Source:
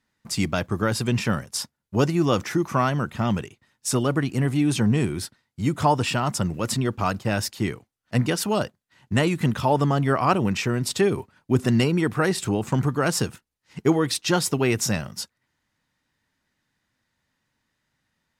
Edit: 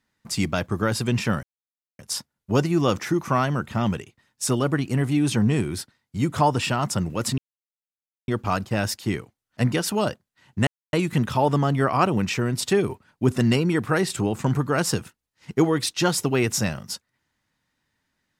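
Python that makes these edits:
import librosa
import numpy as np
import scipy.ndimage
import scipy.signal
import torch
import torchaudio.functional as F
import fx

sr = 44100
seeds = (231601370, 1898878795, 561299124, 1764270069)

y = fx.edit(x, sr, fx.insert_silence(at_s=1.43, length_s=0.56),
    fx.insert_silence(at_s=6.82, length_s=0.9),
    fx.insert_silence(at_s=9.21, length_s=0.26), tone=tone)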